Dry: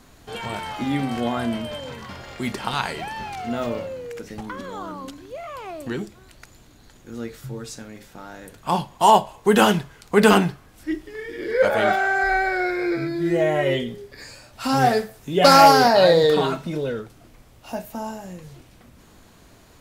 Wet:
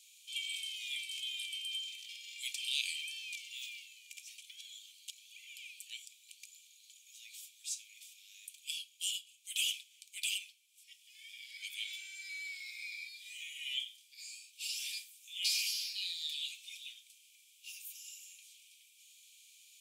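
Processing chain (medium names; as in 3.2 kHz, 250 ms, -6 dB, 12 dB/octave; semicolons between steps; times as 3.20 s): gain riding within 4 dB 0.5 s; rippled Chebyshev high-pass 2.3 kHz, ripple 6 dB; trim -3 dB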